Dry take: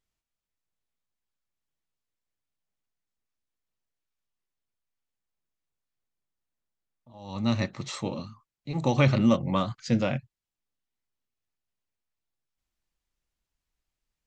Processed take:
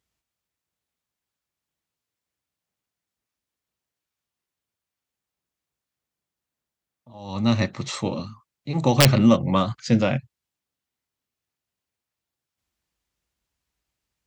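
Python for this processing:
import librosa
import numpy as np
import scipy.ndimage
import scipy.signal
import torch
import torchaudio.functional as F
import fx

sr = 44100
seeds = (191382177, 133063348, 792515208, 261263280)

y = scipy.signal.sosfilt(scipy.signal.butter(4, 50.0, 'highpass', fs=sr, output='sos'), x)
y = (np.mod(10.0 ** (9.5 / 20.0) * y + 1.0, 2.0) - 1.0) / 10.0 ** (9.5 / 20.0)
y = y * librosa.db_to_amplitude(5.5)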